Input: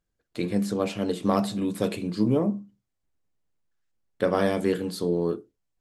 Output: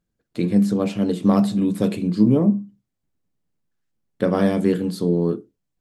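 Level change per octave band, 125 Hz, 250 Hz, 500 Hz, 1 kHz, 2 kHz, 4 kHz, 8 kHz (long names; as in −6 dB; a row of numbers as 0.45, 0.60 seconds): +8.5 dB, +8.0 dB, +3.0 dB, +1.0 dB, 0.0 dB, 0.0 dB, can't be measured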